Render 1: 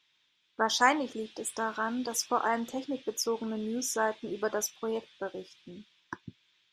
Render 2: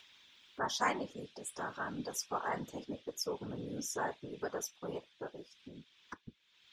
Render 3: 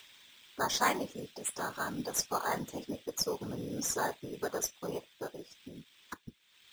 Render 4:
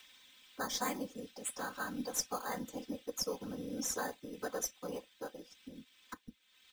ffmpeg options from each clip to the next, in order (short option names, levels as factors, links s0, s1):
-af "acompressor=mode=upward:threshold=0.0126:ratio=2.5,afftfilt=real='hypot(re,im)*cos(2*PI*random(0))':imag='hypot(re,im)*sin(2*PI*random(1))':win_size=512:overlap=0.75,volume=0.794"
-filter_complex "[0:a]asplit=2[s0][s1];[s1]acrusher=samples=8:mix=1:aa=0.000001,volume=0.447[s2];[s0][s2]amix=inputs=2:normalize=0,highshelf=f=4600:g=9.5"
-filter_complex "[0:a]aecho=1:1:3.9:0.69,acrossover=split=180|480|5300[s0][s1][s2][s3];[s2]alimiter=limit=0.0631:level=0:latency=1:release=424[s4];[s0][s1][s4][s3]amix=inputs=4:normalize=0,volume=0.562"